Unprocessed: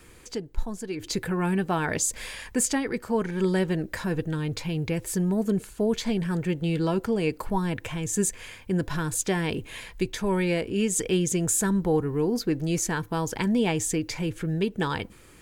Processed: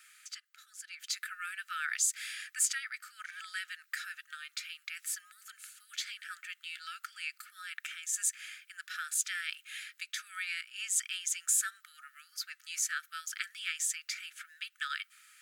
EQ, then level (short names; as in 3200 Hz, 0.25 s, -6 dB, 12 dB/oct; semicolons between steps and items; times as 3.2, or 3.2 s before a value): brick-wall FIR high-pass 1200 Hz; -3.0 dB